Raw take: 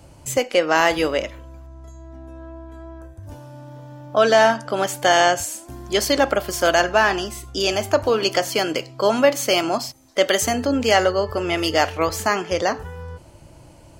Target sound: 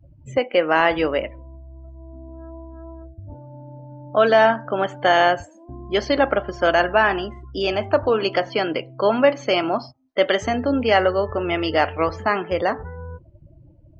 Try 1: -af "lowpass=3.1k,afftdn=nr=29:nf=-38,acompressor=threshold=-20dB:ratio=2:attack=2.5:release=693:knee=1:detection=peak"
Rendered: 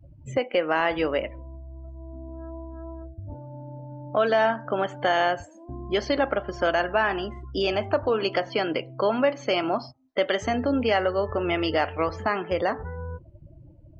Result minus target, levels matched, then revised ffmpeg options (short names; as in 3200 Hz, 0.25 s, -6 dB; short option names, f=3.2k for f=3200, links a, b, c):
compressor: peak gain reduction +7 dB
-af "lowpass=3.1k,afftdn=nr=29:nf=-38"